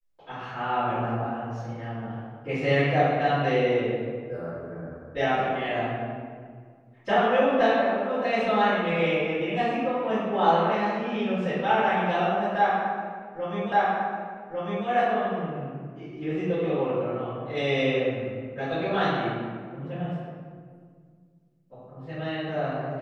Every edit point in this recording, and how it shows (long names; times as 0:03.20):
0:13.72: the same again, the last 1.15 s